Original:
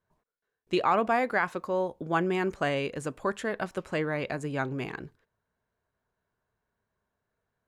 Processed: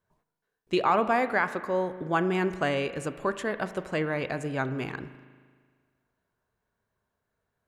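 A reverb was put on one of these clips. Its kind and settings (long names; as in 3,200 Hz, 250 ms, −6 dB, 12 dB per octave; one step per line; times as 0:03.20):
spring reverb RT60 1.7 s, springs 38 ms, chirp 55 ms, DRR 12 dB
level +1 dB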